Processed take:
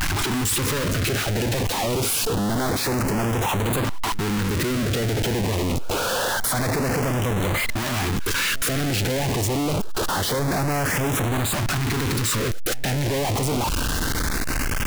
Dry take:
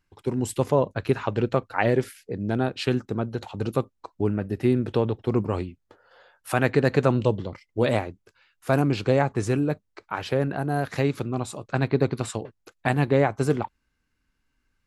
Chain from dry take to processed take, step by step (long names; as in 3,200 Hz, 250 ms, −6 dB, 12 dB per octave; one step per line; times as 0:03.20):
sign of each sample alone
auto-filter notch saw up 0.26 Hz 440–5,900 Hz
echo ahead of the sound 140 ms −21 dB
level +3.5 dB